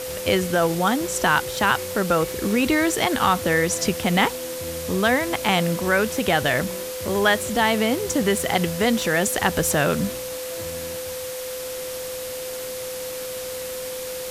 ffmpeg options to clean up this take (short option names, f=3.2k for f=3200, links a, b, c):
-af "adeclick=t=4,bandreject=f=510:w=30,afwtdn=0.02"